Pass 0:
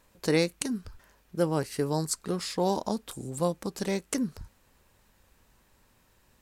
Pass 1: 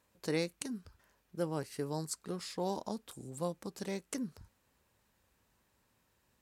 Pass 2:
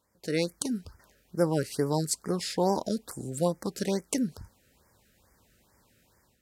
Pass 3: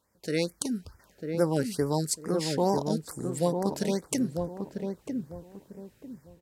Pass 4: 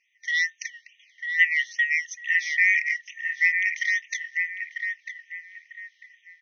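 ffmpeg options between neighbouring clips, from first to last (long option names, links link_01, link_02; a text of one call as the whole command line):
ffmpeg -i in.wav -af "highpass=59,volume=-9dB" out.wav
ffmpeg -i in.wav -af "dynaudnorm=framelen=270:gausssize=3:maxgain=10dB,afftfilt=real='re*(1-between(b*sr/1024,860*pow(3400/860,0.5+0.5*sin(2*PI*2.3*pts/sr))/1.41,860*pow(3400/860,0.5+0.5*sin(2*PI*2.3*pts/sr))*1.41))':imag='im*(1-between(b*sr/1024,860*pow(3400/860,0.5+0.5*sin(2*PI*2.3*pts/sr))/1.41,860*pow(3400/860,0.5+0.5*sin(2*PI*2.3*pts/sr))*1.41))':win_size=1024:overlap=0.75" out.wav
ffmpeg -i in.wav -filter_complex "[0:a]asplit=2[link_01][link_02];[link_02]adelay=947,lowpass=frequency=820:poles=1,volume=-4dB,asplit=2[link_03][link_04];[link_04]adelay=947,lowpass=frequency=820:poles=1,volume=0.31,asplit=2[link_05][link_06];[link_06]adelay=947,lowpass=frequency=820:poles=1,volume=0.31,asplit=2[link_07][link_08];[link_08]adelay=947,lowpass=frequency=820:poles=1,volume=0.31[link_09];[link_01][link_03][link_05][link_07][link_09]amix=inputs=5:normalize=0" out.wav
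ffmpeg -i in.wav -af "afftfilt=real='real(if(lt(b,272),68*(eq(floor(b/68),0)*3+eq(floor(b/68),1)*0+eq(floor(b/68),2)*1+eq(floor(b/68),3)*2)+mod(b,68),b),0)':imag='imag(if(lt(b,272),68*(eq(floor(b/68),0)*3+eq(floor(b/68),1)*0+eq(floor(b/68),2)*1+eq(floor(b/68),3)*2)+mod(b,68),b),0)':win_size=2048:overlap=0.75,afftfilt=real='re*between(b*sr/4096,1800,6400)':imag='im*between(b*sr/4096,1800,6400)':win_size=4096:overlap=0.75,equalizer=frequency=4500:width_type=o:width=0.63:gain=-8.5,volume=7dB" out.wav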